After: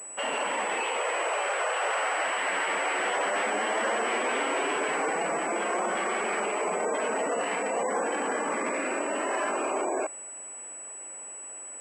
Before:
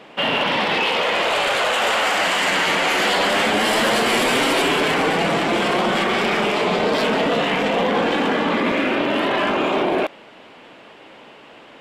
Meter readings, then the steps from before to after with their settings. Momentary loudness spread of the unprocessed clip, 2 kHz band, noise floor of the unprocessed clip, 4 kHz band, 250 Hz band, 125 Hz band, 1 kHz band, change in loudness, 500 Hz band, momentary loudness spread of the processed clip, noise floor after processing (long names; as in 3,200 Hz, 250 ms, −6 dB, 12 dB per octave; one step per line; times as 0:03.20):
3 LU, −9.5 dB, −44 dBFS, −16.5 dB, −14.5 dB, −22.5 dB, −8.0 dB, −10.0 dB, −9.0 dB, 11 LU, −42 dBFS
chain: three-way crossover with the lows and the highs turned down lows −15 dB, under 330 Hz, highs −19 dB, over 3,100 Hz
gate on every frequency bin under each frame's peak −20 dB strong
switching amplifier with a slow clock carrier 7,900 Hz
level −7.5 dB